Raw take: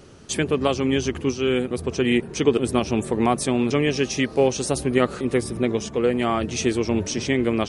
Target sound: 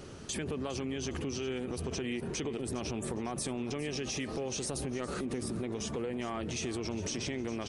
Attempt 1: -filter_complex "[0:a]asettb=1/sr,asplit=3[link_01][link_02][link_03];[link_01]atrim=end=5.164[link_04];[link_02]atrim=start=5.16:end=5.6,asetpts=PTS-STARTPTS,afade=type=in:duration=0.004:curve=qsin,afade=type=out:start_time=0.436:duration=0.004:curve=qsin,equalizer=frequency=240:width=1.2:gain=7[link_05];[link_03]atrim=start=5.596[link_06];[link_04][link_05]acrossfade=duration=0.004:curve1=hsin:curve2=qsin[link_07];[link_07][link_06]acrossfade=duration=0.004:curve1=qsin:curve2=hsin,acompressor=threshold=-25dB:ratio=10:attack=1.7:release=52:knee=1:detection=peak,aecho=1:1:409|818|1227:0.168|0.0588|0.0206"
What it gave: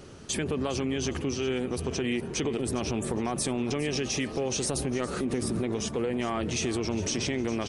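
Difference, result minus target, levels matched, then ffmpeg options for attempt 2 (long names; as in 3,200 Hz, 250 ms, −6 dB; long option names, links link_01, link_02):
downward compressor: peak gain reduction −7 dB
-filter_complex "[0:a]asettb=1/sr,asplit=3[link_01][link_02][link_03];[link_01]atrim=end=5.164[link_04];[link_02]atrim=start=5.16:end=5.6,asetpts=PTS-STARTPTS,afade=type=in:duration=0.004:curve=qsin,afade=type=out:start_time=0.436:duration=0.004:curve=qsin,equalizer=frequency=240:width=1.2:gain=7[link_05];[link_03]atrim=start=5.596[link_06];[link_04][link_05]acrossfade=duration=0.004:curve1=hsin:curve2=qsin[link_07];[link_07][link_06]acrossfade=duration=0.004:curve1=qsin:curve2=hsin,acompressor=threshold=-32.5dB:ratio=10:attack=1.7:release=52:knee=1:detection=peak,aecho=1:1:409|818|1227:0.168|0.0588|0.0206"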